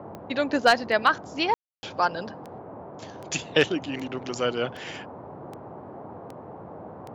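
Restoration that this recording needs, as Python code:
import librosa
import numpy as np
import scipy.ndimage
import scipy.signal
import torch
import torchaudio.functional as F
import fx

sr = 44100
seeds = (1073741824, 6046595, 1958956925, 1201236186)

y = fx.fix_declip(x, sr, threshold_db=-7.5)
y = fx.fix_declick_ar(y, sr, threshold=10.0)
y = fx.fix_ambience(y, sr, seeds[0], print_start_s=6.2, print_end_s=6.7, start_s=1.54, end_s=1.83)
y = fx.noise_reduce(y, sr, print_start_s=6.2, print_end_s=6.7, reduce_db=29.0)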